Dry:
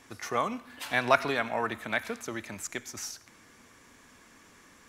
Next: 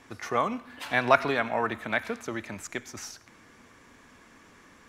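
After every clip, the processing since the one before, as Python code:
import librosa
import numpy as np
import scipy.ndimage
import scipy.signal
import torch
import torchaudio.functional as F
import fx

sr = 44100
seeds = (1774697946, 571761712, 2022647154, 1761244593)

y = fx.high_shelf(x, sr, hz=4800.0, db=-9.5)
y = F.gain(torch.from_numpy(y), 3.0).numpy()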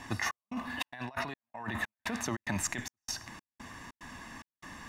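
y = x + 0.61 * np.pad(x, (int(1.1 * sr / 1000.0), 0))[:len(x)]
y = fx.over_compress(y, sr, threshold_db=-37.0, ratio=-1.0)
y = fx.step_gate(y, sr, bpm=146, pattern='xxx..xxx.xxxx..', floor_db=-60.0, edge_ms=4.5)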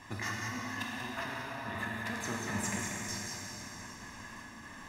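y = x + 10.0 ** (-6.0 / 20.0) * np.pad(x, (int(188 * sr / 1000.0), 0))[:len(x)]
y = fx.rev_plate(y, sr, seeds[0], rt60_s=4.1, hf_ratio=0.85, predelay_ms=0, drr_db=-4.0)
y = F.gain(torch.from_numpy(y), -6.5).numpy()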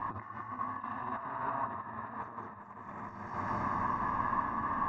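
y = fx.over_compress(x, sr, threshold_db=-44.0, ratio=-0.5)
y = fx.lowpass_res(y, sr, hz=1100.0, q=4.7)
y = y + 10.0 ** (-12.0 / 20.0) * np.pad(y, (int(583 * sr / 1000.0), 0))[:len(y)]
y = F.gain(torch.from_numpy(y), 3.5).numpy()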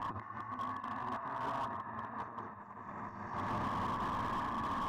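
y = fx.slew_limit(x, sr, full_power_hz=21.0)
y = F.gain(torch.from_numpy(y), -1.0).numpy()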